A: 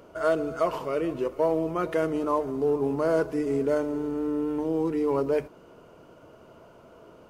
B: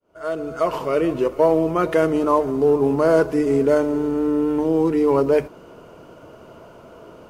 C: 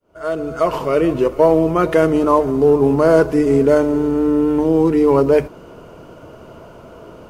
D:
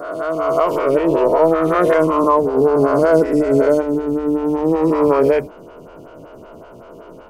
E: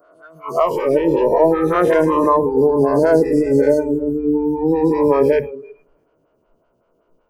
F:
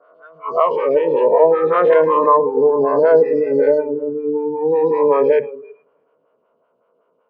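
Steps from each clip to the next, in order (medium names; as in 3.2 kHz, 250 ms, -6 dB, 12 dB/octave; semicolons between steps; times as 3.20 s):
fade-in on the opening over 0.95 s; trim +8 dB
bass shelf 130 Hz +6.5 dB; trim +3.5 dB
reverse spectral sustain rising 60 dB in 1.85 s; lamp-driven phase shifter 5.3 Hz; trim -1 dB
multi-head delay 108 ms, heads first and third, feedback 44%, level -15 dB; spectral noise reduction 25 dB
cabinet simulation 240–3500 Hz, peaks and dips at 330 Hz -9 dB, 480 Hz +7 dB, 1.1 kHz +6 dB; trim -1.5 dB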